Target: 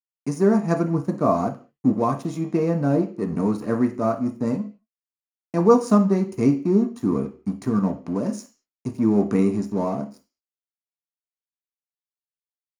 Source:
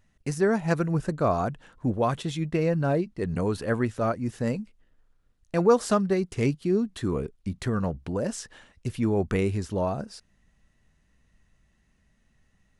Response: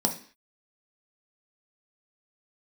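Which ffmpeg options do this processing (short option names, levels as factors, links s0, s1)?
-filter_complex "[0:a]aeval=exprs='sgn(val(0))*max(abs(val(0))-0.00891,0)':c=same[s0];[1:a]atrim=start_sample=2205,asetrate=52920,aresample=44100[s1];[s0][s1]afir=irnorm=-1:irlink=0,volume=0.422"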